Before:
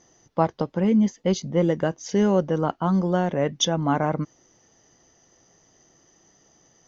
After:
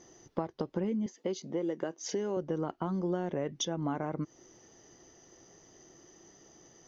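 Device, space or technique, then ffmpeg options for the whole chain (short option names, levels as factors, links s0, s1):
serial compression, peaks first: -filter_complex "[0:a]acompressor=threshold=0.0447:ratio=6,acompressor=threshold=0.0112:ratio=1.5,equalizer=f=360:w=2.7:g=7.5,asettb=1/sr,asplit=3[s0][s1][s2];[s0]atrim=end=1.064[s3];[s1]atrim=start=1.06:end=2.37,asetpts=PTS-STARTPTS,afade=t=in:d=0.004:c=qsin,afade=t=out:st=1.306:d=0.004:c=qsin,highpass=260[s4];[s2]atrim=start=2.366[s5];[s3][s4]acrossfade=d=0.004:c1=hsin:c2=qsin[s6];[s6][s5]acrossfade=d=0.004:c1=qsin:c2=hsin"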